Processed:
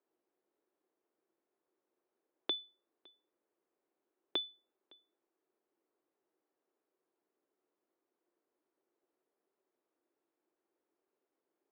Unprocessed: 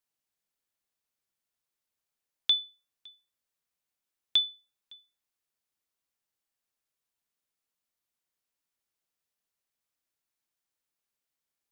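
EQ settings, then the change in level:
high-pass with resonance 350 Hz, resonance Q 4.2
Bessel low-pass filter 830 Hz, order 2
+9.5 dB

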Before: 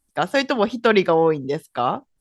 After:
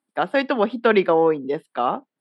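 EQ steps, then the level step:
moving average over 7 samples
high-pass filter 190 Hz 24 dB per octave
0.0 dB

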